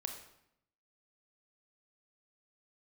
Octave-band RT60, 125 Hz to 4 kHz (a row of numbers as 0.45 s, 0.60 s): 0.95 s, 0.95 s, 0.80 s, 0.75 s, 0.70 s, 0.65 s